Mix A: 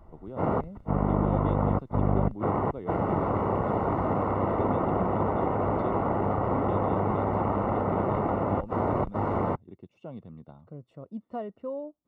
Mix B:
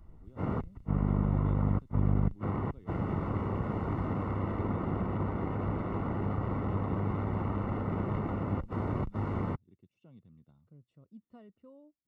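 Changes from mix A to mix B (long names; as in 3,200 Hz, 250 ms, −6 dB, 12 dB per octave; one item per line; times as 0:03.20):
speech −10.0 dB
master: add parametric band 690 Hz −14 dB 2 octaves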